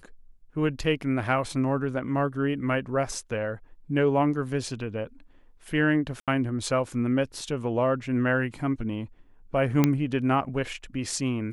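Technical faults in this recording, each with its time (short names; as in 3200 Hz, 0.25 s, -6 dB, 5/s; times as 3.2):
6.2–6.28 gap 77 ms
9.84 pop -7 dBFS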